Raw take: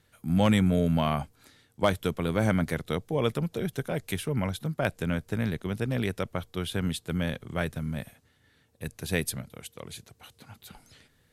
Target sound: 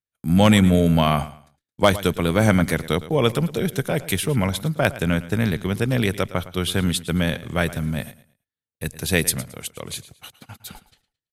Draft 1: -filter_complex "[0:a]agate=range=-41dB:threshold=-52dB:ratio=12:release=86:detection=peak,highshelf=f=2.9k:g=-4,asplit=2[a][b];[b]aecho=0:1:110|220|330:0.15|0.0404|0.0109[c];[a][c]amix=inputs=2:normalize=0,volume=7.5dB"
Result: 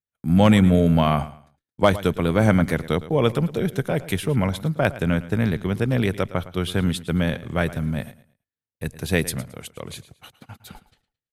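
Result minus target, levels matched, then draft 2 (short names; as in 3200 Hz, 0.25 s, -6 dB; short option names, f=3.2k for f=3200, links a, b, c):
8000 Hz band -7.5 dB
-filter_complex "[0:a]agate=range=-41dB:threshold=-52dB:ratio=12:release=86:detection=peak,highshelf=f=2.9k:g=5,asplit=2[a][b];[b]aecho=0:1:110|220|330:0.15|0.0404|0.0109[c];[a][c]amix=inputs=2:normalize=0,volume=7.5dB"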